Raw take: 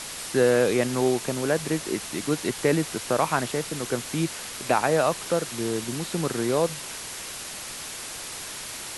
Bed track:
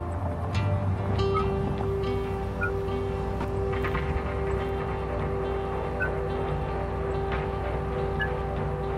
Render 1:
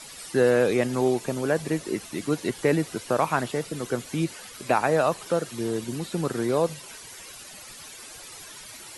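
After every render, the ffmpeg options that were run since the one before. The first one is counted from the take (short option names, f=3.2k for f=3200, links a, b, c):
-af "afftdn=nr=12:nf=-37"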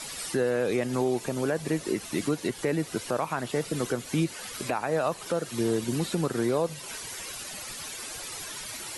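-filter_complex "[0:a]asplit=2[a][b];[b]acompressor=threshold=-29dB:ratio=6,volume=-3dB[c];[a][c]amix=inputs=2:normalize=0,alimiter=limit=-16.5dB:level=0:latency=1:release=316"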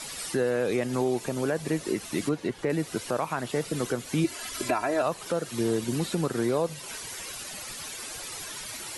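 -filter_complex "[0:a]asettb=1/sr,asplit=3[a][b][c];[a]atrim=end=2.294[d];[b]atrim=start=2.29:end=2.7,asetpts=PTS-STARTPTS,afade=t=in:d=0.004:c=qsin,afade=t=out:st=0.406:d=0.004:c=qsin,lowpass=f=2.4k:p=1[e];[c]atrim=start=2.696[f];[d][e]acrossfade=d=0.004:c1=hsin:c2=qsin[g];[g][f]acrossfade=d=0.004:c1=qsin:c2=hsin,asettb=1/sr,asplit=3[h][i][j];[h]atrim=end=4.244[k];[i]atrim=start=4.24:end=5.02,asetpts=PTS-STARTPTS,afade=t=in:d=0.004:c=qsin,afade=t=out:st=0.776:d=0.004:c=qsin,aecho=1:1:3:0.88,atrim=end_sample=34398[l];[j]atrim=start=5.016[m];[k][l]acrossfade=d=0.004:c1=hsin:c2=qsin[n];[n][m]acrossfade=d=0.004:c1=qsin:c2=hsin"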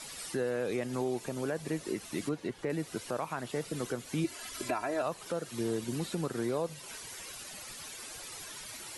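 -af "volume=-6.5dB"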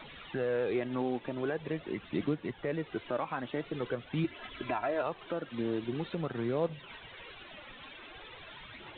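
-af "aphaser=in_gain=1:out_gain=1:delay=4:decay=0.38:speed=0.45:type=triangular,aresample=8000,acrusher=bits=6:mode=log:mix=0:aa=0.000001,aresample=44100"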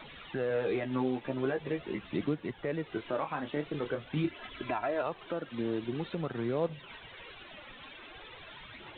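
-filter_complex "[0:a]asettb=1/sr,asplit=3[a][b][c];[a]atrim=end=0.494[d];[b]atrim=start=0.49:end=2.16,asetpts=PTS-STARTPTS,afade=t=in:d=0.004:c=qsin,afade=t=out:st=1.666:d=0.004:c=qsin,asplit=2[e][f];[f]adelay=15,volume=-4.5dB[g];[e][g]amix=inputs=2:normalize=0,atrim=end_sample=73647[h];[c]atrim=start=2.156[i];[d][h]acrossfade=d=0.004:c1=hsin:c2=qsin[j];[j][i]acrossfade=d=0.004:c1=qsin:c2=hsin,asettb=1/sr,asplit=3[k][l][m];[k]atrim=end=2.874[n];[l]atrim=start=2.87:end=4.31,asetpts=PTS-STARTPTS,afade=t=in:d=0.004:c=qsin,afade=t=out:st=1.436:d=0.004:c=qsin,asplit=2[o][p];[p]adelay=27,volume=-7.5dB[q];[o][q]amix=inputs=2:normalize=0,atrim=end_sample=63504[r];[m]atrim=start=4.306[s];[n][r]acrossfade=d=0.004:c1=hsin:c2=qsin[t];[t][s]acrossfade=d=0.004:c1=qsin:c2=hsin"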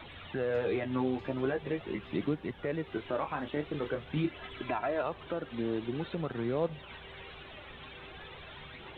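-filter_complex "[1:a]volume=-25dB[a];[0:a][a]amix=inputs=2:normalize=0"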